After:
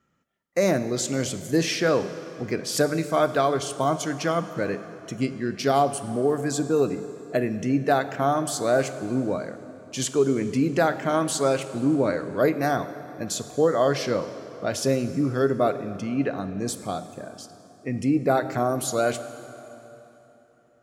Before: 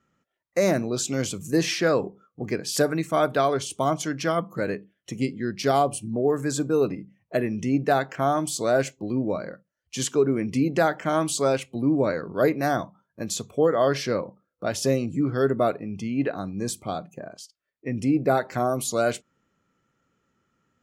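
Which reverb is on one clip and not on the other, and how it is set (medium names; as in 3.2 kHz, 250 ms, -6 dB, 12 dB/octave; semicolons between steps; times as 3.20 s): plate-style reverb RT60 3.4 s, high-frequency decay 0.75×, DRR 11 dB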